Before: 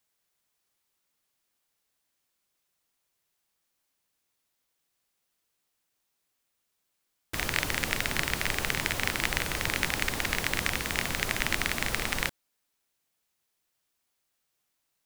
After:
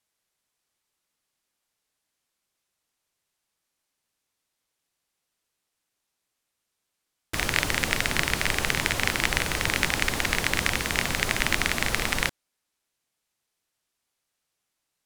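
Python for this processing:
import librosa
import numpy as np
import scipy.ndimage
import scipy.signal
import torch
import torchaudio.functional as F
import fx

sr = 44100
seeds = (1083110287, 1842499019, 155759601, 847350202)

p1 = scipy.signal.sosfilt(scipy.signal.butter(2, 12000.0, 'lowpass', fs=sr, output='sos'), x)
p2 = fx.quant_dither(p1, sr, seeds[0], bits=6, dither='none')
y = p1 + (p2 * librosa.db_to_amplitude(-4.0))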